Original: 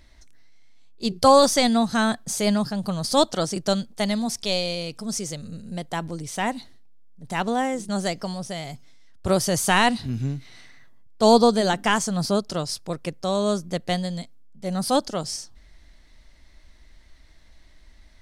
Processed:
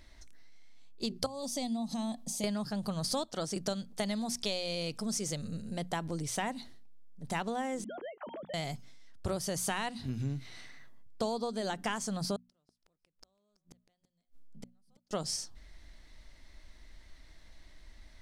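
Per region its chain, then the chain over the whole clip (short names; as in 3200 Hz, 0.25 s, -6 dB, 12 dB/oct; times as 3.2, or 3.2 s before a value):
1.26–2.44 fixed phaser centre 400 Hz, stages 6 + compressor 3:1, threshold -34 dBFS + small resonant body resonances 250/400 Hz, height 6 dB
7.84–8.54 sine-wave speech + compressor 16:1, threshold -36 dBFS + high shelf 2200 Hz -9.5 dB
12.36–15.11 compressor 2.5:1, threshold -34 dBFS + flipped gate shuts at -30 dBFS, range -42 dB + echo 0.33 s -18.5 dB
whole clip: compressor 16:1, threshold -28 dBFS; notches 60/120/180/240 Hz; gain -2 dB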